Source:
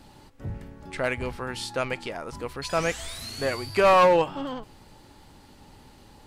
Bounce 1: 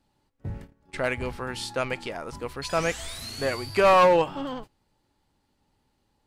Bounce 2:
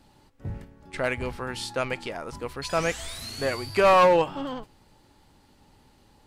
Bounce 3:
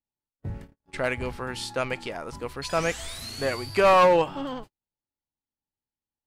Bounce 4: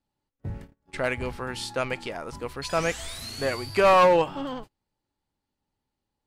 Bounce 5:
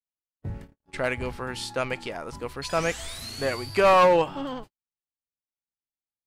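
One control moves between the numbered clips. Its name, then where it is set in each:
noise gate, range: −20, −7, −47, −32, −59 decibels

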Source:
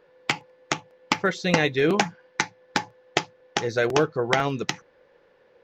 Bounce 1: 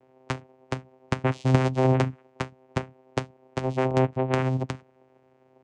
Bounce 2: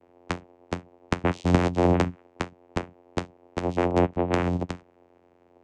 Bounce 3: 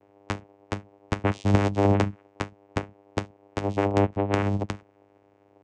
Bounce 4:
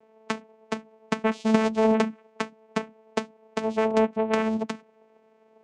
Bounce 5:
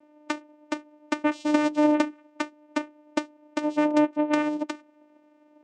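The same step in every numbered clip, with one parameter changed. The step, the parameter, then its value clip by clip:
channel vocoder, frequency: 130, 88, 100, 220, 300 Hertz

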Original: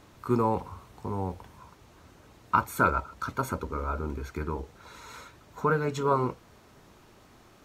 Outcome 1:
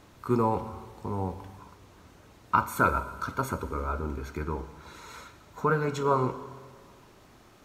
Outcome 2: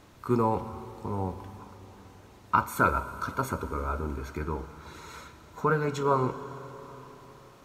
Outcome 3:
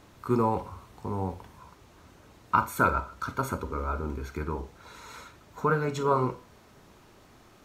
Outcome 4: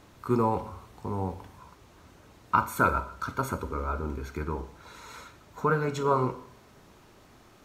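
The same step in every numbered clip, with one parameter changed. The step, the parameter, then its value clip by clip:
four-comb reverb, RT60: 1.7, 4.3, 0.3, 0.66 seconds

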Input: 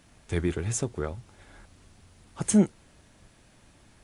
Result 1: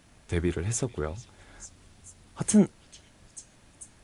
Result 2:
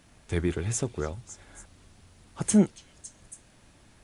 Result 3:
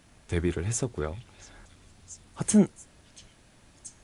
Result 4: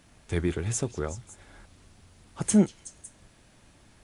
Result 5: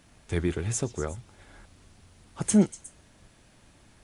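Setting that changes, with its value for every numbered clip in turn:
echo through a band-pass that steps, delay time: 442, 278, 682, 185, 120 milliseconds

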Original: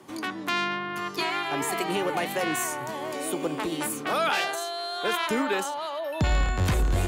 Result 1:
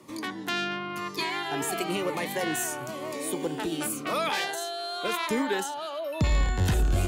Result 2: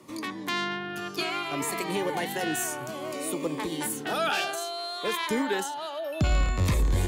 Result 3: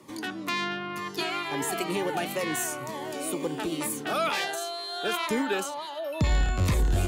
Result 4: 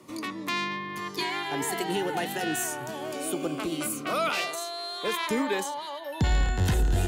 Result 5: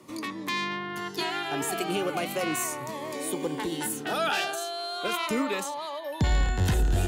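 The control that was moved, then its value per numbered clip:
phaser whose notches keep moving one way, speed: 0.97, 0.61, 2.1, 0.22, 0.37 Hertz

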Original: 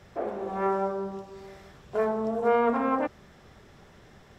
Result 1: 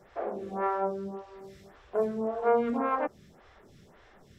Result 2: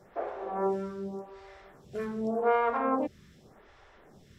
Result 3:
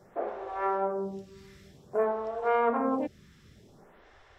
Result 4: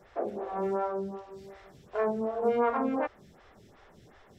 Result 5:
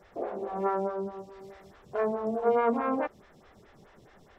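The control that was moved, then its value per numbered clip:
phaser with staggered stages, speed: 1.8, 0.86, 0.53, 2.7, 4.7 Hertz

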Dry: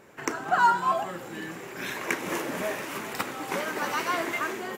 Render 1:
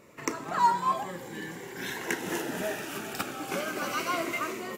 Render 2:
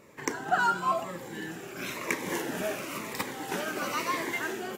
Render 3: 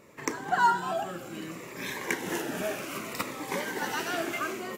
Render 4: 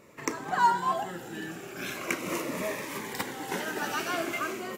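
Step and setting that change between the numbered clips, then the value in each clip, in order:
phaser whose notches keep moving one way, speed: 0.21, 1, 0.63, 0.41 Hertz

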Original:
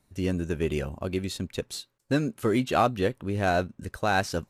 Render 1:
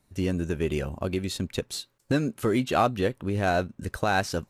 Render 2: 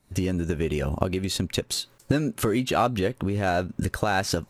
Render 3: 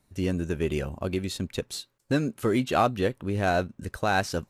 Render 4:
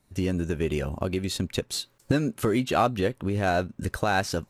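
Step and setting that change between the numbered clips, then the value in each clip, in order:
camcorder AGC, rising by: 14, 90, 5.5, 35 dB per second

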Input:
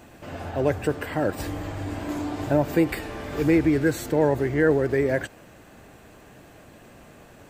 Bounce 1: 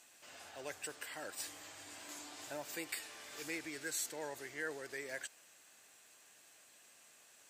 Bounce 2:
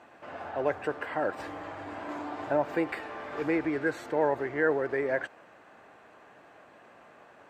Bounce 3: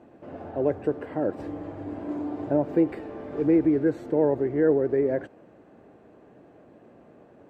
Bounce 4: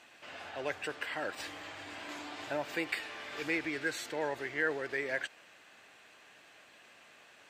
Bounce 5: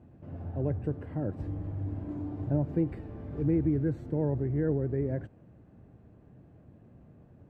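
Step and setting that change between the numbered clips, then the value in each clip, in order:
resonant band-pass, frequency: 7,900, 1,100, 380, 3,000, 110 Hertz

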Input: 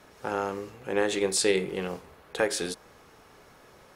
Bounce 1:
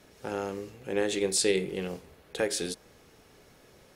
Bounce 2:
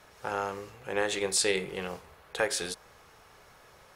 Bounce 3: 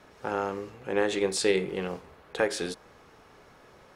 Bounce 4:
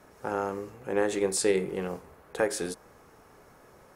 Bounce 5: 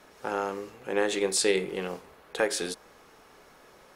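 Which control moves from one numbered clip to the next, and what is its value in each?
parametric band, centre frequency: 1,100, 270, 15,000, 3,500, 95 Hertz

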